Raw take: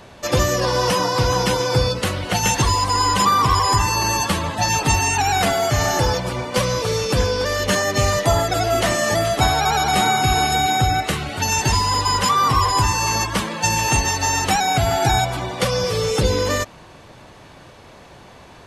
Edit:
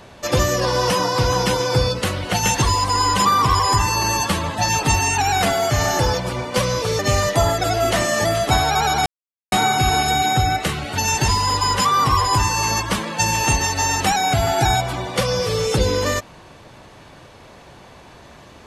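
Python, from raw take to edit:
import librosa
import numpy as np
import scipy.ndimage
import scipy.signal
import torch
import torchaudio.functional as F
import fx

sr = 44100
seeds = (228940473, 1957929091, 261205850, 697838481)

y = fx.edit(x, sr, fx.cut(start_s=6.99, length_s=0.9),
    fx.insert_silence(at_s=9.96, length_s=0.46), tone=tone)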